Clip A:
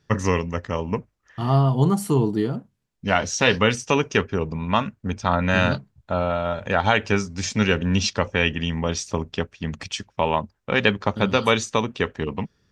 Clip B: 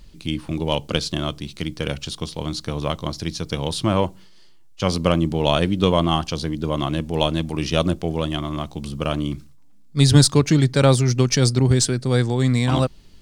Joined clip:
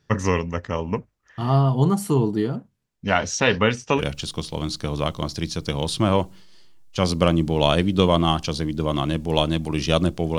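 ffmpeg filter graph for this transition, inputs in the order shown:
-filter_complex "[0:a]asettb=1/sr,asplit=3[s0][s1][s2];[s0]atrim=end=3.404[s3];[s1]atrim=start=3.4:end=4.02,asetpts=PTS-STARTPTS,afade=t=in:d=0.004:c=qsin,afade=t=out:st=0.616:d=0.004:c=qsin,lowpass=f=3400:p=1[s4];[s2]atrim=start=4.016[s5];[s3][s4]acrossfade=d=0.004:c1=hsin:c2=qsin[s6];[s6][s5]acrossfade=d=0.004:c1=qsin:c2=hsin,apad=whole_dur=10.38,atrim=end=10.38,atrim=end=4.02,asetpts=PTS-STARTPTS[s7];[1:a]atrim=start=1.8:end=8.22,asetpts=PTS-STARTPTS[s8];[s7][s8]acrossfade=d=0.06:c1=tri:c2=tri"

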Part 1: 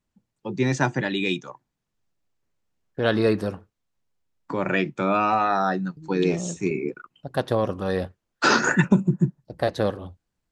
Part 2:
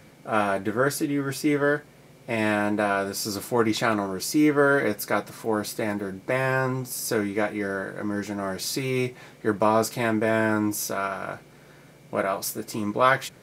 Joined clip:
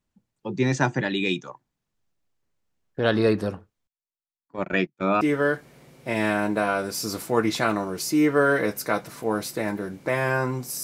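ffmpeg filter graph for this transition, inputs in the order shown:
-filter_complex "[0:a]asettb=1/sr,asplit=3[s0][s1][s2];[s0]atrim=end=3.874[s3];[s1]atrim=start=3.87:end=5.21,asetpts=PTS-STARTPTS,afade=t=in:d=0.004:c=qsin,afade=t=out:st=1.336:d=0.004:c=qsin,agate=range=0.0224:threshold=0.0562:ratio=16:release=100:detection=peak[s4];[s2]atrim=start=5.206[s5];[s3][s4]acrossfade=d=0.004:c1=hsin:c2=qsin[s6];[s6][s5]acrossfade=d=0.004:c1=qsin:c2=hsin,apad=whole_dur=10.83,atrim=end=10.83,atrim=end=5.212[s7];[1:a]atrim=start=1.428:end=7.05[s8];[s7][s8]acrossfade=d=0.004:c1=hsin:c2=hsin"

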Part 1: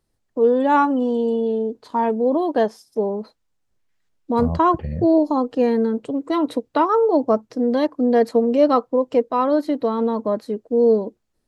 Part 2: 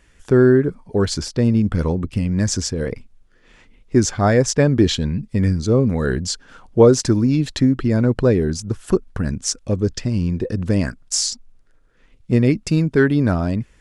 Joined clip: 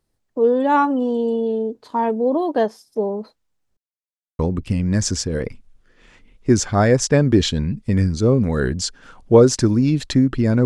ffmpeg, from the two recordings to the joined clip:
-filter_complex "[0:a]apad=whole_dur=10.65,atrim=end=10.65,asplit=2[s0][s1];[s0]atrim=end=3.77,asetpts=PTS-STARTPTS,afade=t=out:st=3.766:d=0.004:c=hsin[s2];[s1]atrim=start=3.77:end=4.39,asetpts=PTS-STARTPTS,volume=0[s3];[1:a]atrim=start=1.85:end=8.11,asetpts=PTS-STARTPTS,afade=t=in:d=0.004:c=hsin[s4];[s2][s3][s4]concat=n=3:v=0:a=1"

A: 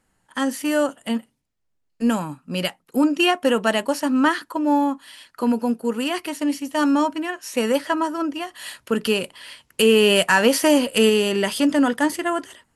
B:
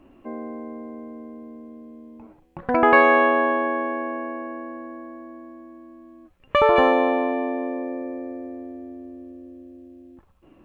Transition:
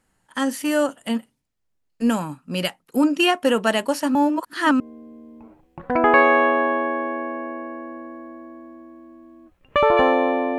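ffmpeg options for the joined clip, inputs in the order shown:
-filter_complex "[0:a]apad=whole_dur=10.58,atrim=end=10.58,asplit=2[s0][s1];[s0]atrim=end=4.152[s2];[s1]atrim=start=4.148:end=4.802,asetpts=PTS-STARTPTS,areverse[s3];[1:a]atrim=start=1.588:end=7.37[s4];[s2][s3]acrossfade=d=0.004:c1=hsin:c2=hsin[s5];[s5][s4]acrossfade=d=0.004:c1=hsin:c2=hsin"

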